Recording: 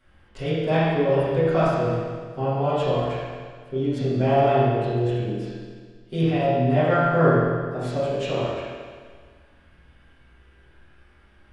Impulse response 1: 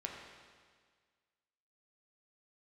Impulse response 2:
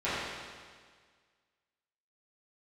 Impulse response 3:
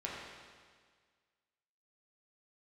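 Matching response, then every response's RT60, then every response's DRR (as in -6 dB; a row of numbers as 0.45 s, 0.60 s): 2; 1.7 s, 1.7 s, 1.7 s; -0.5 dB, -14.5 dB, -5.5 dB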